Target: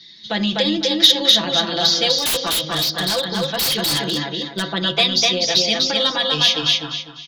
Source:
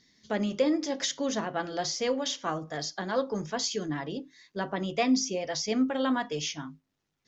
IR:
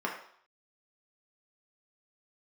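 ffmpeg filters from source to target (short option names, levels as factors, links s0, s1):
-filter_complex "[0:a]highshelf=f=2200:g=4.5,aecho=1:1:5.9:0.92,aecho=1:1:249|498|747|996:0.708|0.212|0.0637|0.0191,acrossover=split=180|3000[s0][s1][s2];[s1]acompressor=threshold=0.0316:ratio=2.5[s3];[s0][s3][s2]amix=inputs=3:normalize=0,lowpass=f=3800:t=q:w=6.6,bandreject=f=80.18:t=h:w=4,bandreject=f=160.36:t=h:w=4,bandreject=f=240.54:t=h:w=4,bandreject=f=320.72:t=h:w=4,bandreject=f=400.9:t=h:w=4,bandreject=f=481.08:t=h:w=4,bandreject=f=561.26:t=h:w=4,bandreject=f=641.44:t=h:w=4,bandreject=f=721.62:t=h:w=4,bandreject=f=801.8:t=h:w=4,bandreject=f=881.98:t=h:w=4,bandreject=f=962.16:t=h:w=4,bandreject=f=1042.34:t=h:w=4,bandreject=f=1122.52:t=h:w=4,bandreject=f=1202.7:t=h:w=4,bandreject=f=1282.88:t=h:w=4,bandreject=f=1363.06:t=h:w=4,bandreject=f=1443.24:t=h:w=4,bandreject=f=1523.42:t=h:w=4,bandreject=f=1603.6:t=h:w=4,bandreject=f=1683.78:t=h:w=4,bandreject=f=1763.96:t=h:w=4,asettb=1/sr,asplit=3[s4][s5][s6];[s4]atrim=end=2.184[s7];[s5]atrim=start=2.18:end=4.63,asetpts=PTS-STARTPTS,afade=t=in:d=0.004:c=qsin,afade=t=out:st=2.446:d=0.004:c=qsin,aeval=exprs='0.0891*(abs(mod(val(0)/0.0891+3,4)-2)-1)':c=same[s8];[s6]atrim=start=4.626[s9];[s7][s8]acrossfade=d=0.004:c1=hsin:c2=qsin[s10];[s10][s9]acrossfade=d=0.004:c1=qsin:c2=hsin,acontrast=80"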